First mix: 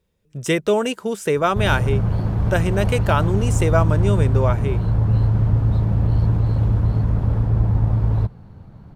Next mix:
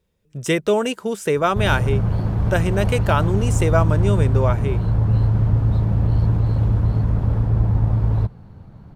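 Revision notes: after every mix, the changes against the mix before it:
none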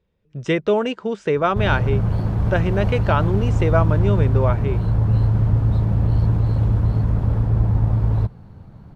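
speech: add Gaussian blur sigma 1.9 samples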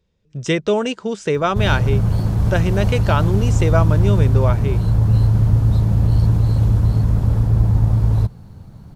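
master: add tone controls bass +3 dB, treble +15 dB

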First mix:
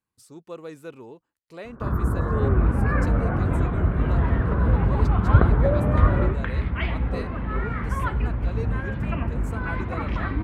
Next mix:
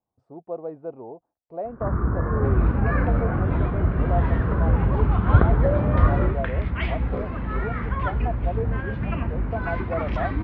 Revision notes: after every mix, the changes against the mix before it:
speech: add synth low-pass 710 Hz, resonance Q 5.7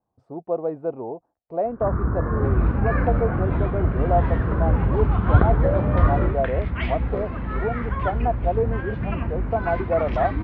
speech +7.0 dB

